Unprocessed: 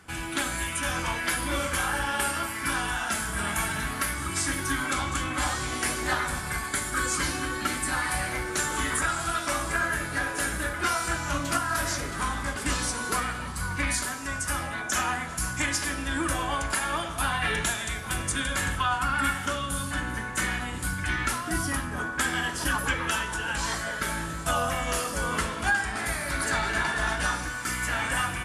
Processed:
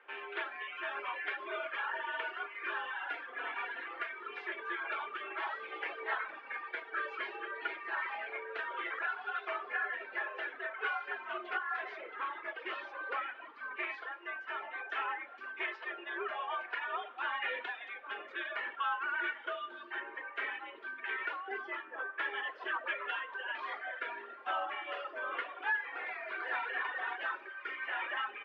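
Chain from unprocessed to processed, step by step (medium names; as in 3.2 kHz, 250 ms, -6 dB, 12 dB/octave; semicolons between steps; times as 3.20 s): reverb removal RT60 1.5 s; saturation -19 dBFS, distortion -21 dB; mistuned SSB +75 Hz 340–2900 Hz; trim -5.5 dB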